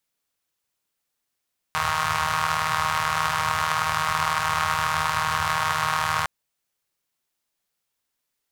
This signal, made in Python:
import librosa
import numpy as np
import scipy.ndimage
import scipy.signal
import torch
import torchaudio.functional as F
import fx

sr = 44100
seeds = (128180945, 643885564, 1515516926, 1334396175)

y = fx.engine_four(sr, seeds[0], length_s=4.51, rpm=4700, resonances_hz=(100.0, 1100.0))